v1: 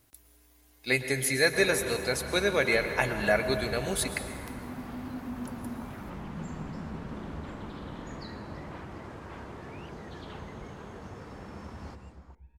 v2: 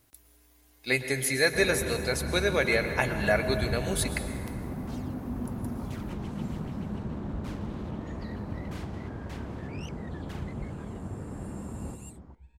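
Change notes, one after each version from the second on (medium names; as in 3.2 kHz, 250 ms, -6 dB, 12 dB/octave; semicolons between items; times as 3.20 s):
first sound: add tilt shelf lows +9 dB, about 790 Hz; second sound: remove low-pass 2 kHz 12 dB/octave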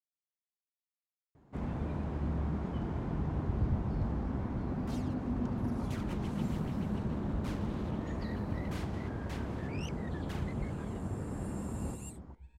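speech: muted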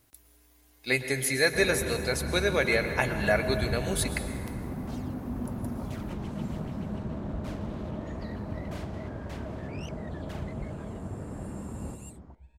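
speech: unmuted; second sound: add peaking EQ 630 Hz +14.5 dB 0.24 oct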